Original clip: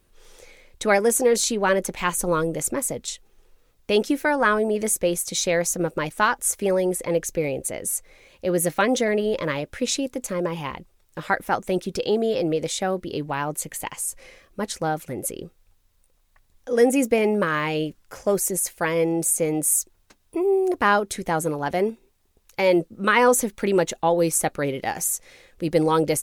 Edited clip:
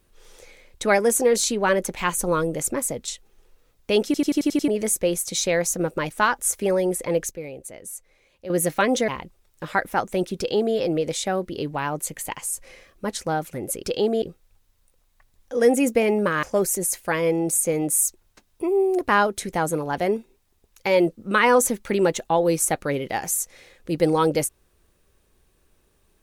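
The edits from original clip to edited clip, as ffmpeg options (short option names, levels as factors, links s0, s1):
-filter_complex "[0:a]asplit=14[s0][s1][s2][s3][s4][s5][s6][s7][s8][s9][s10][s11][s12][s13];[s0]atrim=end=4.142[s14];[s1]atrim=start=4.048:end=4.142[s15];[s2]atrim=start=4.048:end=4.142[s16];[s3]atrim=start=4.048:end=4.142[s17];[s4]atrim=start=4.048:end=4.142[s18];[s5]atrim=start=4.048:end=4.142[s19];[s6]atrim=start=4.048:end=4.142[s20];[s7]atrim=start=4.678:end=7.312[s21];[s8]atrim=start=7.308:end=8.502,asetpts=PTS-STARTPTS,volume=0.316[s22];[s9]atrim=start=8.498:end=9.082[s23];[s10]atrim=start=10.628:end=15.382[s24];[s11]atrim=start=11.918:end=12.312[s25];[s12]atrim=start=15.378:end=17.592[s26];[s13]atrim=start=18.158[s27];[s14][s15]acrossfade=d=0.004:c1=hsin:c2=hsin[s28];[s28][s16]acrossfade=d=0.004:c1=hsin:c2=hsin[s29];[s29][s17]acrossfade=d=0.004:c1=hsin:c2=hsin[s30];[s30][s18]acrossfade=d=0.004:c1=hsin:c2=hsin[s31];[s31][s19]acrossfade=d=0.004:c1=hsin:c2=hsin[s32];[s32][s20]acrossfade=d=0.004:c1=hsin:c2=hsin[s33];[s33][s21]acrossfade=d=0.004:c1=hsin:c2=hsin[s34];[s34][s22]acrossfade=d=0.004:c1=hsin:c2=hsin[s35];[s35][s23]acrossfade=d=0.004:c1=hsin:c2=hsin[s36];[s36][s24]acrossfade=d=0.004:c1=hsin:c2=hsin[s37];[s37][s25]acrossfade=d=0.004:c1=hsin:c2=hsin[s38];[s38][s26]acrossfade=d=0.004:c1=hsin:c2=hsin[s39];[s39][s27]acrossfade=d=0.004:c1=hsin:c2=hsin"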